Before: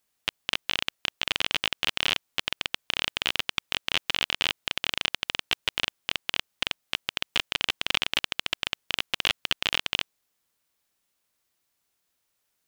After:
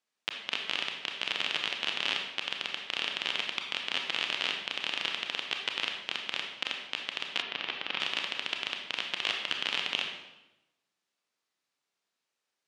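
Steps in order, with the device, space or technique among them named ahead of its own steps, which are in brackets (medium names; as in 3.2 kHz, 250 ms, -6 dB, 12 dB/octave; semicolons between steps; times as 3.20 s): supermarket ceiling speaker (band-pass 210–6000 Hz; reverberation RT60 0.95 s, pre-delay 26 ms, DRR 2 dB); 7.42–8.00 s: distance through air 180 m; trim -5.5 dB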